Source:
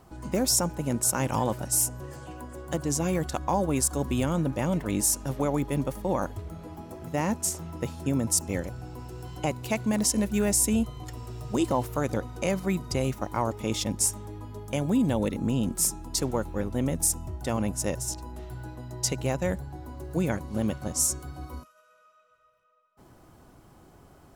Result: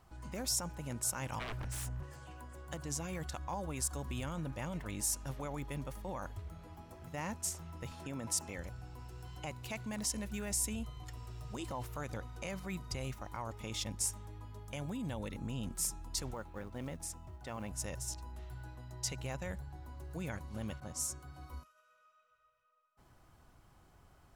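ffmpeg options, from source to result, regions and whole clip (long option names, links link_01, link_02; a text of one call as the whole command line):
ffmpeg -i in.wav -filter_complex "[0:a]asettb=1/sr,asplit=3[link_01][link_02][link_03];[link_01]atrim=end=1.394[link_04];[link_02]atrim=start=1.39:end=2.03,asetpts=PTS-STARTPTS,afade=type=in:duration=0.004:curve=qsin,afade=type=out:start_time=0.636:duration=0.004:curve=qsin,bass=frequency=250:gain=8,treble=frequency=4000:gain=-9,aeval=exprs='0.0473*(abs(mod(val(0)/0.0473+3,4)-2)-1)':channel_layout=same[link_05];[link_03]atrim=start=2.026[link_06];[link_04][link_05]acrossfade=duration=0.004:curve1=hsin:curve2=qsin[link_07];[link_07][link_06]acrossfade=duration=0.004:curve1=qsin:curve2=hsin,asettb=1/sr,asplit=3[link_08][link_09][link_10];[link_08]atrim=end=7.914[link_11];[link_09]atrim=start=7.91:end=8.58,asetpts=PTS-STARTPTS,afade=type=in:duration=0.004:curve=qsin,afade=type=out:start_time=0.666:duration=0.004:curve=qsin,highpass=frequency=270:poles=1,highshelf=frequency=5300:gain=-7,acontrast=51[link_12];[link_10]atrim=start=8.576[link_13];[link_11][link_12]acrossfade=duration=0.004:curve1=hsin:curve2=qsin[link_14];[link_14][link_13]acrossfade=duration=0.004:curve1=qsin:curve2=hsin,asettb=1/sr,asplit=3[link_15][link_16][link_17];[link_15]atrim=end=16.344[link_18];[link_16]atrim=start=16.34:end=17.71,asetpts=PTS-STARTPTS,afade=type=in:duration=0.004:curve=qsin,afade=type=out:start_time=1.366:duration=0.004:curve=qsin,lowpass=frequency=2700:poles=1,lowshelf=frequency=110:gain=-11,acrusher=bits=8:mode=log:mix=0:aa=0.000001[link_19];[link_17]atrim=start=17.706[link_20];[link_18][link_19]acrossfade=duration=0.004:curve1=hsin:curve2=qsin[link_21];[link_21][link_20]acrossfade=duration=0.004:curve1=qsin:curve2=hsin,asettb=1/sr,asplit=3[link_22][link_23][link_24];[link_22]atrim=end=20.804[link_25];[link_23]atrim=start=20.8:end=21.5,asetpts=PTS-STARTPTS,afade=type=in:duration=0.004:curve=qsin,afade=type=out:start_time=0.696:duration=0.004:curve=qsin,highpass=86,adynamicequalizer=threshold=0.00398:dfrequency=1700:dqfactor=0.7:tfrequency=1700:tqfactor=0.7:attack=5:release=100:ratio=0.375:range=2.5:mode=cutabove:tftype=highshelf[link_26];[link_24]atrim=start=21.496[link_27];[link_25][link_26]acrossfade=duration=0.004:curve1=hsin:curve2=qsin[link_28];[link_28][link_27]acrossfade=duration=0.004:curve1=qsin:curve2=hsin,highshelf=frequency=4400:gain=-7.5,alimiter=limit=-20.5dB:level=0:latency=1:release=27,equalizer=frequency=320:width_type=o:width=2.9:gain=-12,volume=-3dB" out.wav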